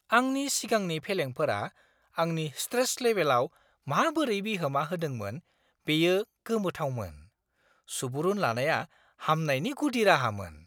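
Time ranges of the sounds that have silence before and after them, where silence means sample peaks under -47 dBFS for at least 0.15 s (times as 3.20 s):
2.16–3.47 s
3.87–5.39 s
5.87–6.24 s
6.46–7.24 s
7.88–8.85 s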